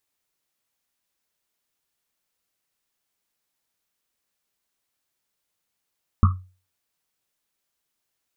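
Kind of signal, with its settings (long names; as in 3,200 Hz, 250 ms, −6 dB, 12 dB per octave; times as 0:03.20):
drum after Risset, pitch 92 Hz, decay 0.36 s, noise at 1,200 Hz, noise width 210 Hz, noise 25%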